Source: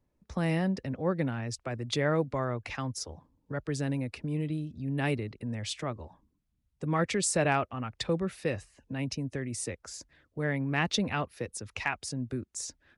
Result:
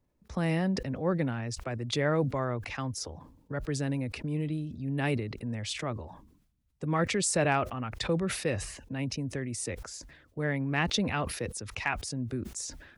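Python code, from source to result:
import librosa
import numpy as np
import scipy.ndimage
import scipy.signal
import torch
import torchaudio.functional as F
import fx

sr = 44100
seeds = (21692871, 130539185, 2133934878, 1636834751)

y = fx.sustainer(x, sr, db_per_s=69.0)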